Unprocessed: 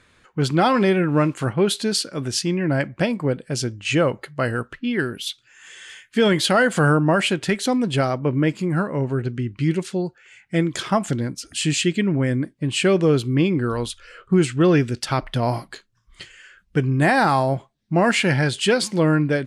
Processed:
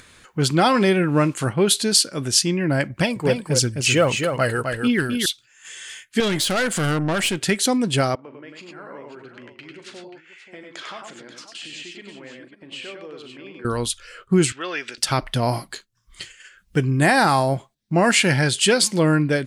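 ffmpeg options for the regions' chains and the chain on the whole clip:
ffmpeg -i in.wav -filter_complex "[0:a]asettb=1/sr,asplit=3[link_01][link_02][link_03];[link_01]atrim=end=2.904[link_04];[link_02]atrim=start=2.9:end=5.26,asetpts=PTS-STARTPTS,afade=type=in:duration=0.004:curve=qsin,afade=type=out:start_time=2.356:duration=0.004:curve=qsin,aphaser=in_gain=1:out_gain=1:delay=2.5:decay=0.45:speed=1.5:type=triangular,aecho=1:1:259:0.531,atrim=end_sample=104076[link_05];[link_03]atrim=start=5.256[link_06];[link_04][link_05]acrossfade=duration=0.004:curve1=hsin:curve2=qsin[link_07];[link_07][link_06]acrossfade=duration=0.004:curve1=qsin:curve2=hsin,asettb=1/sr,asplit=3[link_08][link_09][link_10];[link_08]atrim=end=6.204[link_11];[link_09]atrim=start=6.2:end=7.42,asetpts=PTS-STARTPTS,afade=type=in:duration=0.004:curve=qsin,afade=type=out:start_time=1.216:duration=0.004:curve=qsin,deesser=0.45,aeval=exprs='(tanh(7.94*val(0)+0.35)-tanh(0.35))/7.94':channel_layout=same[link_12];[link_10]atrim=start=7.416[link_13];[link_11][link_12]acrossfade=duration=0.004:curve1=hsin:curve2=qsin[link_14];[link_14][link_13]acrossfade=duration=0.004:curve1=qsin:curve2=hsin,asettb=1/sr,asplit=3[link_15][link_16][link_17];[link_15]atrim=end=8.154[link_18];[link_16]atrim=start=8.15:end=13.65,asetpts=PTS-STARTPTS,afade=type=in:duration=0.004:curve=qsin,afade=type=out:start_time=5.496:duration=0.004:curve=qsin,acompressor=threshold=-31dB:ratio=10:attack=3.2:release=140:knee=1:detection=peak,highpass=440,lowpass=3100,aecho=1:1:40|98|112|534:0.251|0.631|0.266|0.266,atrim=end_sample=242550[link_19];[link_17]atrim=start=13.646[link_20];[link_18][link_19]acrossfade=duration=0.004:curve1=hsin:curve2=qsin[link_21];[link_21][link_20]acrossfade=duration=0.004:curve1=qsin:curve2=hsin,asettb=1/sr,asplit=3[link_22][link_23][link_24];[link_22]atrim=end=14.524[link_25];[link_23]atrim=start=14.52:end=14.98,asetpts=PTS-STARTPTS,afade=type=in:duration=0.004:curve=qsin,afade=type=out:start_time=0.456:duration=0.004:curve=qsin,acompressor=threshold=-25dB:ratio=2.5:attack=3.2:release=140:knee=1:detection=peak,highpass=380,lowpass=3300,tiltshelf=frequency=690:gain=-9.5[link_26];[link_24]atrim=start=14.976[link_27];[link_25][link_26]acrossfade=duration=0.004:curve1=hsin:curve2=qsin[link_28];[link_28][link_27]acrossfade=duration=0.004:curve1=qsin:curve2=hsin,agate=range=-7dB:threshold=-45dB:ratio=16:detection=peak,highshelf=frequency=4400:gain=11,acompressor=mode=upward:threshold=-38dB:ratio=2.5" out.wav

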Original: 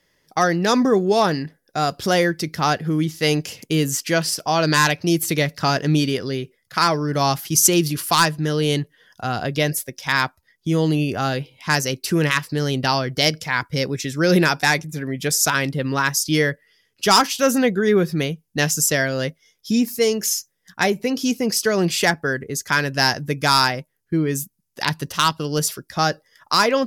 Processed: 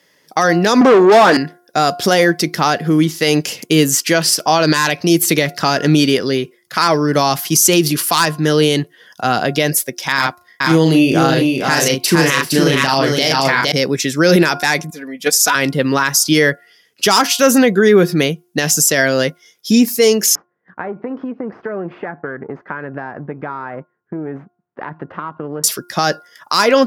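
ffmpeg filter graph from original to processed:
ffmpeg -i in.wav -filter_complex "[0:a]asettb=1/sr,asplit=3[link_01][link_02][link_03];[link_01]atrim=end=0.814[link_04];[link_02]atrim=start=0.81:end=1.37,asetpts=PTS-STARTPTS,afade=type=in:duration=0.004:curve=qsin,afade=type=out:start_time=0.556:duration=0.004:curve=qsin,asplit=2[link_05][link_06];[link_06]highpass=frequency=720:poles=1,volume=27dB,asoftclip=type=tanh:threshold=-5.5dB[link_07];[link_05][link_07]amix=inputs=2:normalize=0,lowpass=frequency=1500:poles=1,volume=-6dB,equalizer=frequency=77:width_type=o:width=1.8:gain=-13.5[link_08];[link_03]atrim=start=1.366[link_09];[link_04][link_08]acrossfade=duration=0.004:curve1=hsin:curve2=qsin[link_10];[link_10][link_09]acrossfade=duration=0.004:curve1=qsin:curve2=hsin,asettb=1/sr,asplit=3[link_11][link_12][link_13];[link_11]atrim=end=10.144[link_14];[link_12]atrim=start=10.14:end=13.72,asetpts=PTS-STARTPTS,afade=type=in:duration=0.004:curve=qsin,afade=type=out:start_time=3.576:duration=0.004:curve=qsin,asplit=2[link_15][link_16];[link_16]adelay=37,volume=-5dB[link_17];[link_15][link_17]amix=inputs=2:normalize=0,atrim=end_sample=157878,aecho=1:1:462:0.631,atrim=end_sample=157878[link_18];[link_13]atrim=start=13.716[link_19];[link_14][link_18]acrossfade=duration=0.004:curve1=hsin:curve2=qsin[link_20];[link_20][link_19]acrossfade=duration=0.004:curve1=qsin:curve2=hsin,asettb=1/sr,asplit=3[link_21][link_22][link_23];[link_21]atrim=end=14.904[link_24];[link_22]atrim=start=14.9:end=15.55,asetpts=PTS-STARTPTS,afade=type=in:duration=0.004:curve=qsin,afade=type=out:start_time=0.646:duration=0.004:curve=qsin,agate=range=-10dB:threshold=-22dB:ratio=16:release=100:detection=peak,highpass=frequency=300:poles=1,aecho=1:1:4.1:0.69,atrim=end_sample=28665[link_25];[link_23]atrim=start=15.546[link_26];[link_24][link_25]acrossfade=duration=0.004:curve1=hsin:curve2=qsin[link_27];[link_27][link_26]acrossfade=duration=0.004:curve1=qsin:curve2=hsin,asettb=1/sr,asplit=3[link_28][link_29][link_30];[link_28]atrim=end=20.354[link_31];[link_29]atrim=start=20.35:end=25.64,asetpts=PTS-STARTPTS,afade=type=in:duration=0.004:curve=qsin,afade=type=out:start_time=5.286:duration=0.004:curve=qsin,aeval=exprs='if(lt(val(0),0),0.447*val(0),val(0))':channel_layout=same,acompressor=threshold=-28dB:ratio=6:attack=3.2:release=140:knee=1:detection=peak,lowpass=frequency=1600:width=0.5412,lowpass=frequency=1600:width=1.3066[link_32];[link_30]atrim=start=25.636[link_33];[link_31][link_32]acrossfade=duration=0.004:curve1=hsin:curve2=qsin[link_34];[link_34][link_33]acrossfade=duration=0.004:curve1=qsin:curve2=hsin,highpass=190,bandreject=frequency=354.7:width_type=h:width=4,bandreject=frequency=709.4:width_type=h:width=4,bandreject=frequency=1064.1:width_type=h:width=4,bandreject=frequency=1418.8:width_type=h:width=4,alimiter=level_in=10.5dB:limit=-1dB:release=50:level=0:latency=1,volume=-1dB" out.wav

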